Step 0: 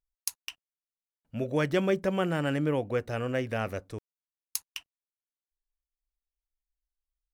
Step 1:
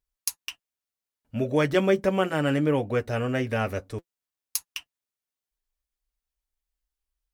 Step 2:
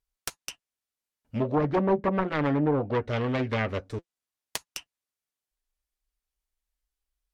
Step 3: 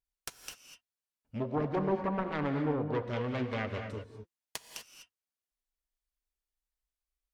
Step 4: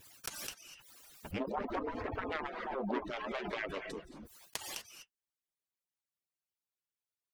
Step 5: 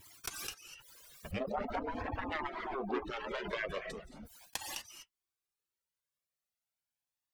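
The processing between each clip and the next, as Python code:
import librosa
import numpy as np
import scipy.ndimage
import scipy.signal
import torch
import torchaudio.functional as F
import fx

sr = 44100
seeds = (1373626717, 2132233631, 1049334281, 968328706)

y1 = fx.notch_comb(x, sr, f0_hz=170.0)
y1 = F.gain(torch.from_numpy(y1), 5.5).numpy()
y2 = fx.self_delay(y1, sr, depth_ms=0.8)
y2 = fx.env_lowpass_down(y2, sr, base_hz=900.0, full_db=-19.0)
y3 = fx.rev_gated(y2, sr, seeds[0], gate_ms=270, shape='rising', drr_db=6.0)
y3 = F.gain(torch.from_numpy(y3), -7.5).numpy()
y4 = fx.hpss_only(y3, sr, part='percussive')
y4 = fx.pre_swell(y4, sr, db_per_s=33.0)
y5 = fx.comb_cascade(y4, sr, direction='rising', hz=0.4)
y5 = F.gain(torch.from_numpy(y5), 5.0).numpy()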